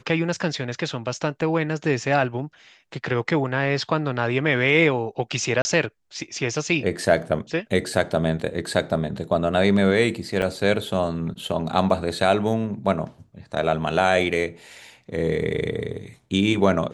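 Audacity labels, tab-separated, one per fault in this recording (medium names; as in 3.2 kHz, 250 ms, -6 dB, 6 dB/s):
1.410000	1.420000	dropout 6 ms
5.620000	5.650000	dropout 30 ms
10.420000	10.420000	dropout 3.2 ms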